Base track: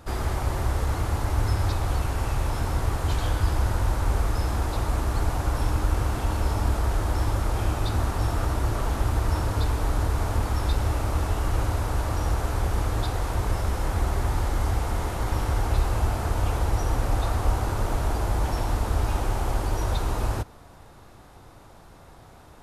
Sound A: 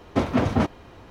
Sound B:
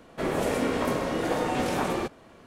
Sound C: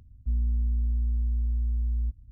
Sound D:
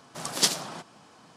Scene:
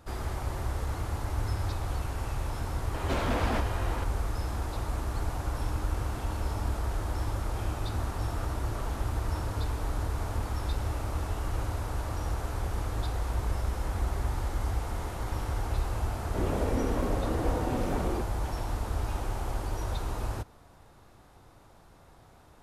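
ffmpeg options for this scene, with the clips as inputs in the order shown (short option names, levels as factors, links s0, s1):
-filter_complex "[0:a]volume=0.447[s0];[1:a]asplit=2[s1][s2];[s2]highpass=f=720:p=1,volume=79.4,asoftclip=type=tanh:threshold=0.398[s3];[s1][s3]amix=inputs=2:normalize=0,lowpass=f=1800:p=1,volume=0.501[s4];[2:a]tiltshelf=f=970:g=6[s5];[s4]atrim=end=1.1,asetpts=PTS-STARTPTS,volume=0.168,afade=t=in:d=0.004:c=hsin,afade=t=out:st=1.096:d=0.004:c=hsin,adelay=2940[s6];[3:a]atrim=end=2.31,asetpts=PTS-STARTPTS,volume=0.316,afade=t=in:d=0.004:c=hsin,afade=t=out:st=2.306:d=0.004:c=hsin,adelay=12710[s7];[s5]atrim=end=2.46,asetpts=PTS-STARTPTS,volume=0.376,afade=t=in:d=0.004:c=hsin,afade=t=out:st=2.456:d=0.004:c=hsin,adelay=16150[s8];[s0][s6][s7][s8]amix=inputs=4:normalize=0"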